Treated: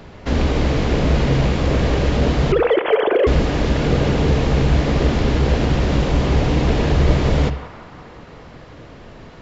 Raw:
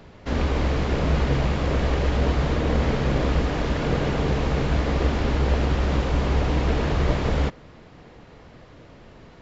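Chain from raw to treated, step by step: 2.52–3.27 s: formants replaced by sine waves; band-passed feedback delay 179 ms, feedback 69%, band-pass 1.2 kHz, level -14.5 dB; on a send at -10 dB: reverberation, pre-delay 49 ms; on the sum: dynamic bell 1.2 kHz, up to -5 dB, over -37 dBFS, Q 0.8; in parallel at -10 dB: hard clipper -18 dBFS, distortion -16 dB; on the sum: trim +4.5 dB

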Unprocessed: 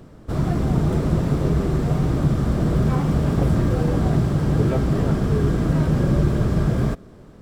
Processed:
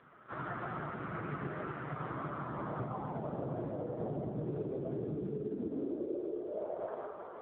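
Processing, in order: 0.86–1.88 s: median filter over 41 samples; 5.04–5.57 s: spectral selection erased 490–1200 Hz; high-pass 48 Hz 24 dB/octave; 2.79–3.67 s: bass shelf 290 Hz +5.5 dB; band-pass sweep 1.4 kHz -> 420 Hz, 1.85–4.53 s; echo that smears into a reverb 582 ms, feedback 41%, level -10.5 dB; high-pass sweep 110 Hz -> 970 Hz, 5.02–6.95 s; random-step tremolo; 4.44–4.93 s: treble shelf 2.7 kHz +8.5 dB; reverberation RT60 0.45 s, pre-delay 65 ms, DRR 1.5 dB; compression 16:1, threshold -39 dBFS, peak gain reduction 20.5 dB; trim +6 dB; AMR-NB 5.9 kbps 8 kHz

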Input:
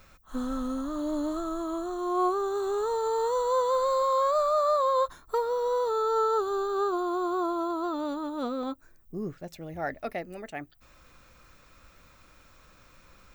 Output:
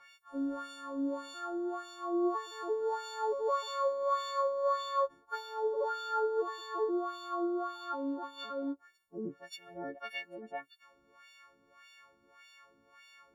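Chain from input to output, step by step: partials quantised in pitch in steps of 4 st; wah-wah 1.7 Hz 290–3200 Hz, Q 2.1

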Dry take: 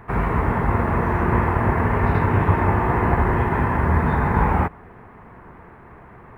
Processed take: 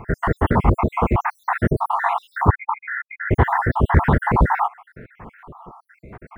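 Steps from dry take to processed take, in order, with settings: random holes in the spectrogram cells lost 72%; 2.50–3.31 s: brick-wall FIR band-pass 830–2500 Hz; loudspeaker Doppler distortion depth 0.26 ms; trim +6.5 dB

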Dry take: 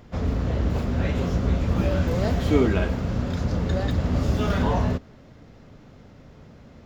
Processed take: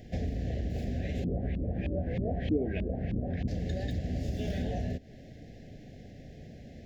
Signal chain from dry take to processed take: elliptic band-stop 740–1700 Hz, stop band 40 dB; compression 6:1, threshold -30 dBFS, peak gain reduction 16 dB; 1.24–3.48 s: LFO low-pass saw up 3.2 Hz 230–3100 Hz

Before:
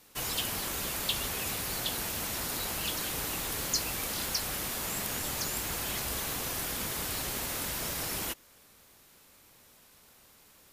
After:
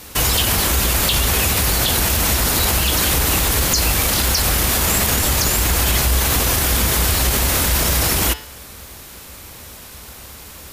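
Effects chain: peaking EQ 63 Hz +14 dB 1 oct; de-hum 145.2 Hz, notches 36; loudness maximiser +27.5 dB; trim -6.5 dB

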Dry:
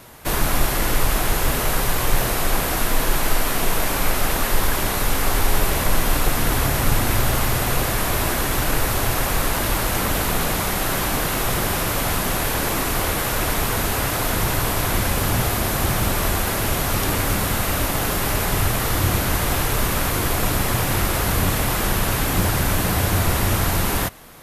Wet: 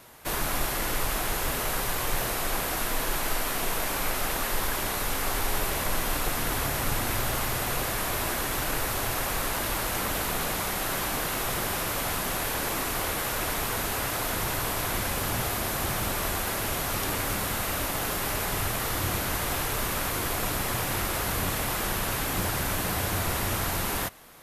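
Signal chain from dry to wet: bass shelf 280 Hz -6 dB; trim -6 dB

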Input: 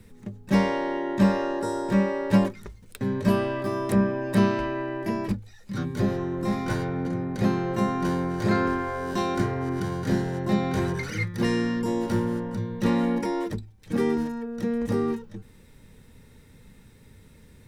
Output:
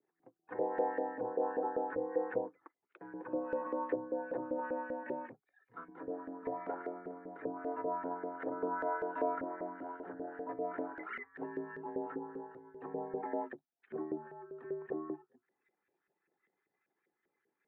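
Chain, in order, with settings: resonances exaggerated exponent 1.5; spectral noise reduction 8 dB; low-pass that closes with the level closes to 610 Hz, closed at -18.5 dBFS; mistuned SSB -81 Hz 360–3000 Hz; LFO band-pass saw up 5.1 Hz 500–1800 Hz; trim +3 dB

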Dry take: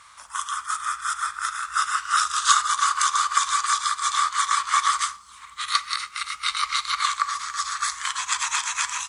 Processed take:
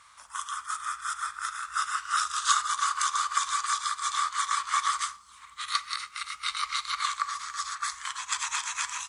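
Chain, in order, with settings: 7.75–8.52 s: three bands expanded up and down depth 70%; trim -6 dB

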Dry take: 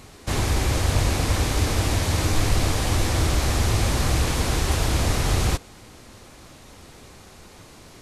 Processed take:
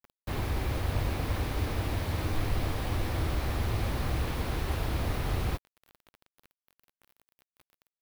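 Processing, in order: bit crusher 6-bit; peaking EQ 7.2 kHz -13.5 dB 1.2 oct; trim -8.5 dB

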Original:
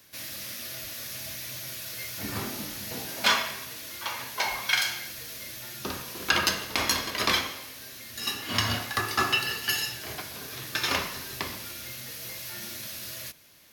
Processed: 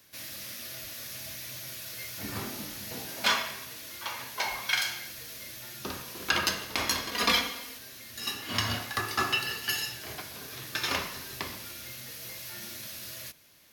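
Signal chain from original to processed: 7.11–7.78 s: comb 4.2 ms, depth 98%; trim -3 dB

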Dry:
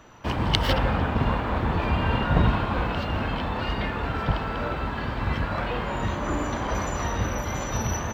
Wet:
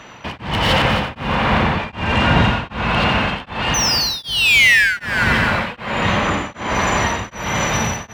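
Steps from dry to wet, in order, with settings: high-order bell 650 Hz -9 dB 2.9 oct; painted sound fall, 3.74–4.97 s, 1.4–6.2 kHz -14 dBFS; overdrive pedal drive 30 dB, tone 1.5 kHz, clips at -3 dBFS; on a send: multi-head delay 89 ms, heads first and third, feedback 62%, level -7 dB; on the sum: tremolo of two beating tones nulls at 1.3 Hz

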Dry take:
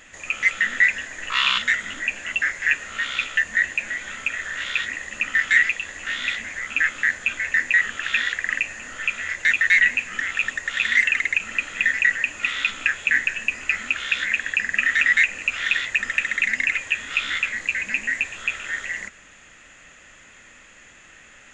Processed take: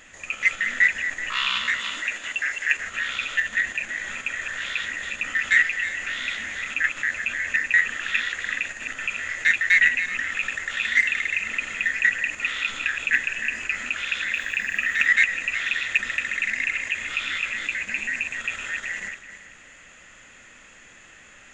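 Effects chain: backward echo that repeats 190 ms, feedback 49%, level -7 dB; 1.81–2.77 s: tone controls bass -10 dB, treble +2 dB; 14.32–15.06 s: added noise violet -60 dBFS; in parallel at 0 dB: level held to a coarse grid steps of 17 dB; on the sum: trim -6 dB

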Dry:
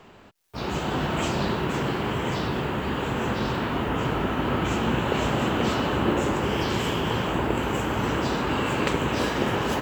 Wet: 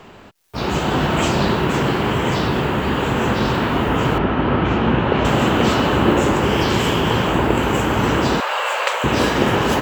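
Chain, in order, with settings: 4.18–5.25 s: distance through air 230 m; 8.40–9.04 s: elliptic high-pass 540 Hz, stop band 60 dB; trim +8 dB

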